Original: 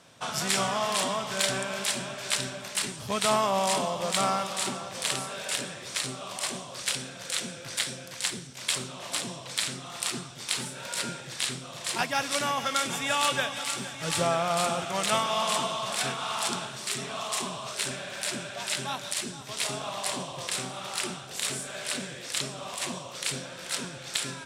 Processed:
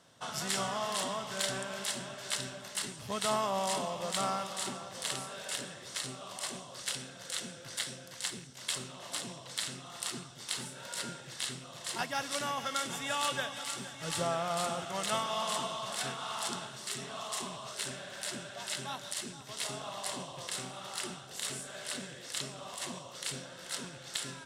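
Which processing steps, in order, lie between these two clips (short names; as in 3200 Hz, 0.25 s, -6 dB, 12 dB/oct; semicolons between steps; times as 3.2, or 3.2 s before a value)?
rattling part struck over -42 dBFS, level -34 dBFS; notch 2400 Hz, Q 7.4; gain -6.5 dB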